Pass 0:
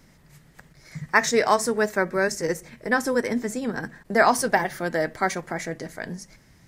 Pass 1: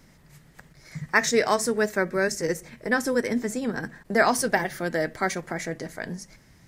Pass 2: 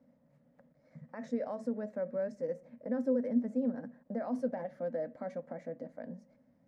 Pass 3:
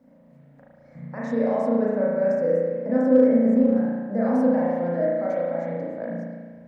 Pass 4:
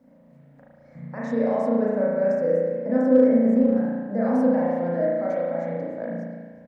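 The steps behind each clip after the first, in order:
dynamic equaliser 930 Hz, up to −5 dB, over −35 dBFS, Q 1.4
brickwall limiter −17 dBFS, peak gain reduction 11 dB; pair of resonant band-passes 370 Hz, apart 1.1 octaves
spring reverb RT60 1.6 s, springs 35 ms, chirp 55 ms, DRR −6.5 dB; in parallel at −11 dB: asymmetric clip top −21 dBFS; on the sum: level +5 dB
single-tap delay 365 ms −21 dB

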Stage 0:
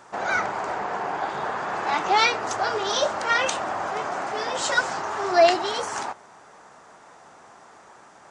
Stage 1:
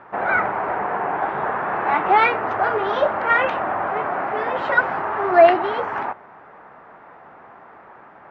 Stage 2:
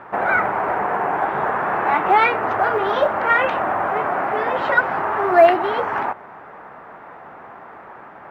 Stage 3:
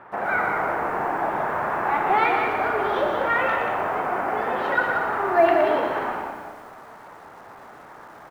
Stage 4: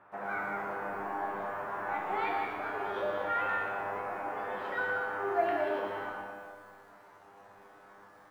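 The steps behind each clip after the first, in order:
low-pass filter 2,300 Hz 24 dB per octave; level +5 dB
in parallel at 0 dB: downward compressor 12 to 1, threshold −26 dBFS, peak gain reduction 19.5 dB; on the sum: floating-point word with a short mantissa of 6 bits; level −1 dB
echo with shifted repeats 184 ms, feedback 32%, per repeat −57 Hz, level −5.5 dB; four-comb reverb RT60 1.4 s, combs from 26 ms, DRR 5.5 dB; feedback echo at a low word length 118 ms, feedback 35%, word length 7 bits, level −8.5 dB; level −6.5 dB
tuned comb filter 100 Hz, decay 0.66 s, harmonics all, mix 90%

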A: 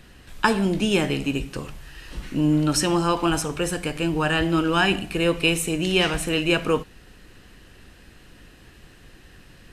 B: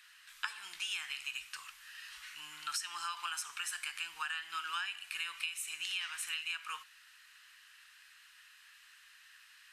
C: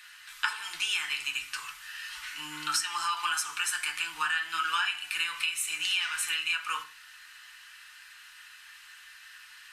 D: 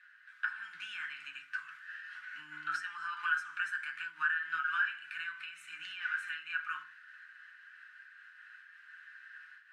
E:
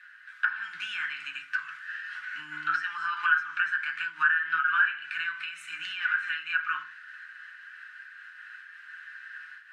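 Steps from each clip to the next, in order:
inverse Chebyshev high-pass filter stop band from 610 Hz, stop band 40 dB; downward compressor 16 to 1, threshold −30 dBFS, peak gain reduction 14.5 dB; level −4.5 dB
feedback delay network reverb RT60 0.32 s, low-frequency decay 1.4×, high-frequency decay 0.45×, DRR 1 dB; level +7.5 dB
automatic gain control gain up to 4 dB; pair of resonant band-passes 570 Hz, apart 2.9 octaves; amplitude modulation by smooth noise, depth 65%; level +3 dB
treble cut that deepens with the level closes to 2,900 Hz, closed at −31 dBFS; level +8.5 dB

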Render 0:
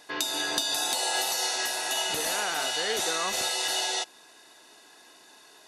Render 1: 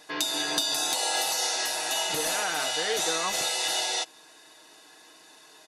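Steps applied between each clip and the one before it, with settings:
comb filter 6.4 ms, depth 48%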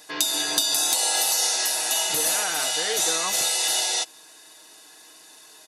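high-shelf EQ 6,000 Hz +12 dB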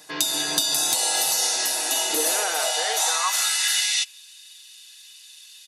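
high-pass filter sweep 130 Hz → 3,000 Hz, 0:01.31–0:04.23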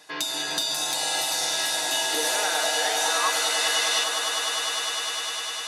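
mid-hump overdrive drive 7 dB, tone 2,900 Hz, clips at −6.5 dBFS
echo that builds up and dies away 101 ms, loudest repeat 8, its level −11.5 dB
level −2.5 dB

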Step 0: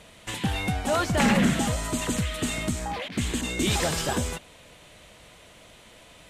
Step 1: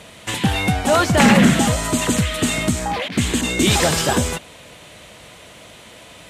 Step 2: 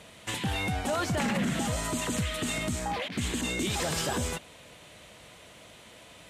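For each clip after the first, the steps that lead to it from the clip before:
high-pass filter 68 Hz; level +9 dB
brickwall limiter −12 dBFS, peak gain reduction 9.5 dB; level −9 dB

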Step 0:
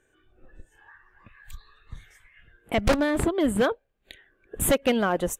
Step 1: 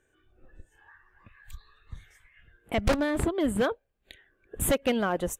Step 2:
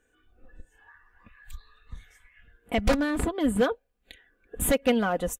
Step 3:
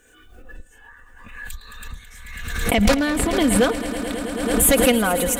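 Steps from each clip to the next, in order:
parametric band 72 Hz +4 dB 1.2 octaves; level −3.5 dB
comb filter 4.1 ms, depth 54%
high-shelf EQ 2,600 Hz +8 dB; echo that builds up and dies away 109 ms, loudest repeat 5, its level −15.5 dB; background raised ahead of every attack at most 41 dB per second; level +4.5 dB

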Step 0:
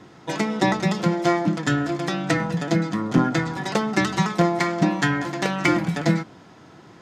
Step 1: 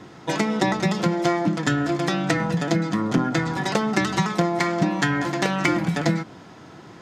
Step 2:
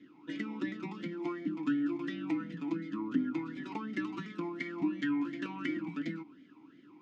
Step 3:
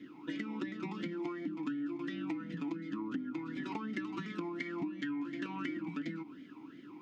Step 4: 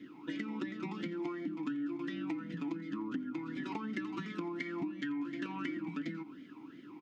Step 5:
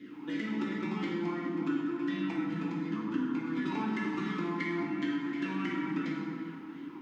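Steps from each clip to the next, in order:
downward compressor 3 to 1, threshold −22 dBFS, peak gain reduction 8 dB; level +3.5 dB
formant filter swept between two vowels i-u 2.8 Hz; level −3.5 dB
downward compressor 6 to 1, threshold −42 dBFS, peak gain reduction 16.5 dB; level +6 dB
single-tap delay 87 ms −21 dB
dense smooth reverb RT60 2.1 s, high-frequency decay 0.6×, DRR −4.5 dB

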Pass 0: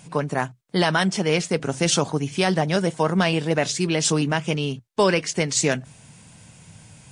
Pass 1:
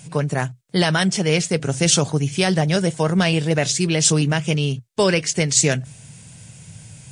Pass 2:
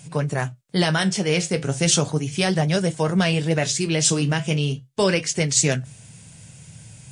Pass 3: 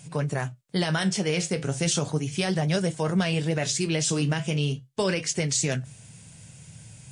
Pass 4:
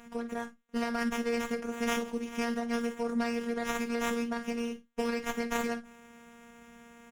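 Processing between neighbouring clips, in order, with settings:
octave-band graphic EQ 125/250/1,000/8,000 Hz +6/−4/−6/+4 dB; level +3 dB
flanger 0.36 Hz, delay 6.9 ms, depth 9.3 ms, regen −63%; level +2 dB
brickwall limiter −12 dBFS, peak gain reduction 7.5 dB; level −3 dB
phases set to zero 235 Hz; ambience of single reflections 45 ms −15.5 dB, 56 ms −15 dB; windowed peak hold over 9 samples; level −5.5 dB

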